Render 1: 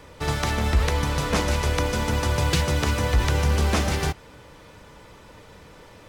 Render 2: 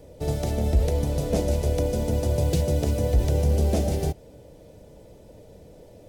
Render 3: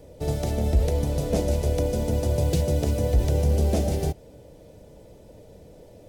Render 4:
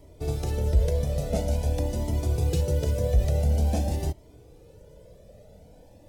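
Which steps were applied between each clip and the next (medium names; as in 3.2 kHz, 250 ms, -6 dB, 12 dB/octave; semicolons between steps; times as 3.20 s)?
FFT filter 310 Hz 0 dB, 650 Hz +3 dB, 1.1 kHz -21 dB, 13 kHz -1 dB
no audible change
Shepard-style flanger rising 0.48 Hz; trim +1 dB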